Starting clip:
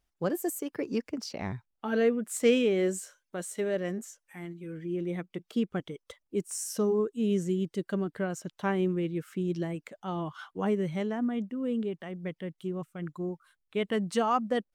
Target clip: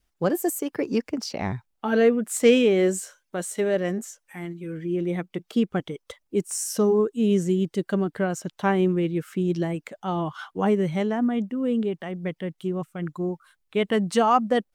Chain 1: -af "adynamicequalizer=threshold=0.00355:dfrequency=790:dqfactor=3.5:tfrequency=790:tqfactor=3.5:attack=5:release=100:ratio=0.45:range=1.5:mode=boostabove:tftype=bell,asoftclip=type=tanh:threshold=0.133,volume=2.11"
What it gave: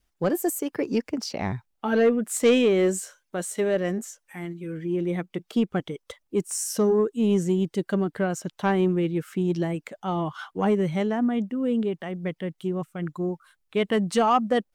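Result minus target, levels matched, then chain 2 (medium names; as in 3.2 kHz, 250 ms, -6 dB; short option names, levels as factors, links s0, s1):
saturation: distortion +20 dB
-af "adynamicequalizer=threshold=0.00355:dfrequency=790:dqfactor=3.5:tfrequency=790:tqfactor=3.5:attack=5:release=100:ratio=0.45:range=1.5:mode=boostabove:tftype=bell,asoftclip=type=tanh:threshold=0.501,volume=2.11"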